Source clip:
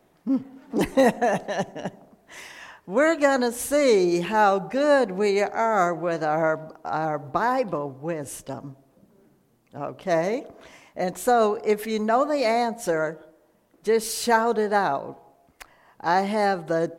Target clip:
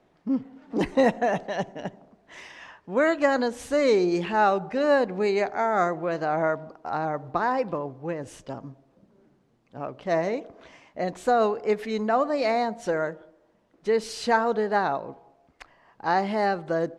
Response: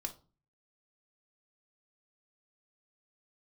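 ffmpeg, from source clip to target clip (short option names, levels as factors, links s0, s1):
-af "lowpass=5200,volume=0.794"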